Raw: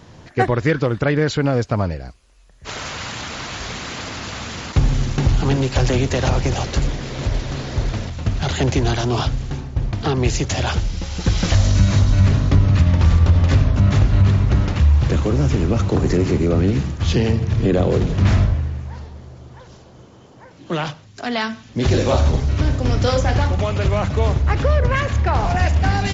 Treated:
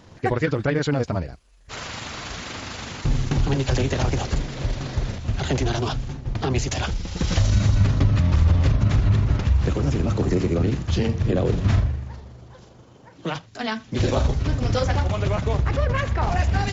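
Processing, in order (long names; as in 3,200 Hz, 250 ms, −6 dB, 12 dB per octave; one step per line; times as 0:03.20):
time stretch by overlap-add 0.64×, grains 81 ms
level −3 dB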